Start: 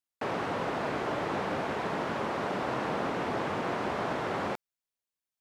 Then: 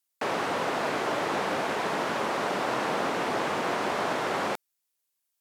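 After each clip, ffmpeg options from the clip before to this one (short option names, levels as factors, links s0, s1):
-af "highpass=f=280:p=1,aemphasis=mode=production:type=cd,volume=1.68"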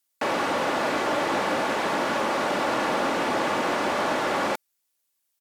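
-af "aecho=1:1:3.5:0.32,asoftclip=type=tanh:threshold=0.119,volume=1.58"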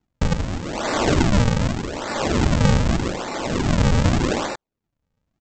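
-af "aresample=16000,acrusher=samples=26:mix=1:aa=0.000001:lfo=1:lforange=41.6:lforate=0.83,aresample=44100,tremolo=f=0.76:d=0.77,volume=2.82"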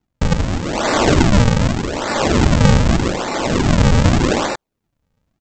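-af "dynaudnorm=f=190:g=3:m=2,volume=1.12"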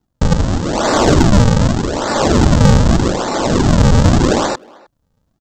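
-filter_complex "[0:a]equalizer=f=2300:w=1.9:g=-8.5,acontrast=31,asplit=2[s0][s1];[s1]adelay=310,highpass=300,lowpass=3400,asoftclip=type=hard:threshold=0.355,volume=0.0631[s2];[s0][s2]amix=inputs=2:normalize=0,volume=0.891"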